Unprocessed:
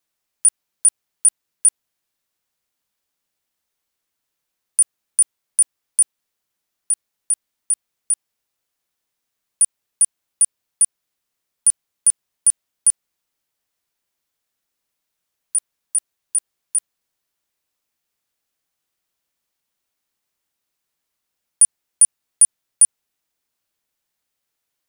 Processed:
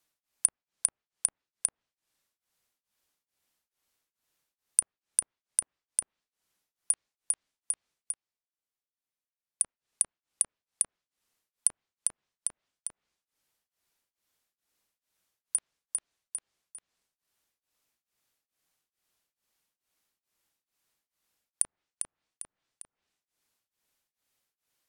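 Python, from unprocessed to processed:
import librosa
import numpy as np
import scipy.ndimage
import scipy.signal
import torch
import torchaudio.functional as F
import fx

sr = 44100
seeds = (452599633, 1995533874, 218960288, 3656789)

y = fx.env_lowpass_down(x, sr, base_hz=1300.0, full_db=-12.0)
y = fx.level_steps(y, sr, step_db=24, at=(8.12, 9.63))
y = y * np.abs(np.cos(np.pi * 2.3 * np.arange(len(y)) / sr))
y = y * 10.0 ** (1.0 / 20.0)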